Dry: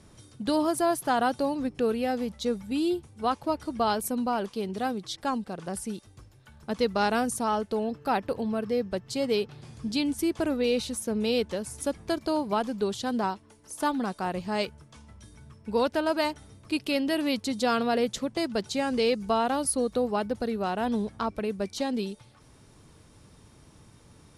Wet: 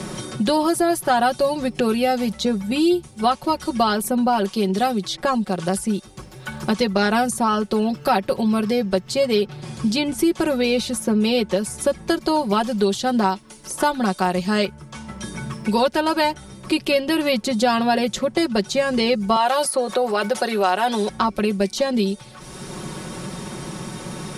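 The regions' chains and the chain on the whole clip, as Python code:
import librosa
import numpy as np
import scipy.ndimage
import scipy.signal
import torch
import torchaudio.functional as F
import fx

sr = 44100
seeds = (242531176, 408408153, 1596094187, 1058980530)

y = fx.chain(x, sr, fx.highpass(hz=510.0, slope=12),
    fx.env_flatten(amount_pct=50), at=(19.36, 21.09))
y = y + 0.75 * np.pad(y, (int(5.4 * sr / 1000.0), 0))[:len(y)]
y = fx.band_squash(y, sr, depth_pct=70)
y = y * 10.0 ** (6.5 / 20.0)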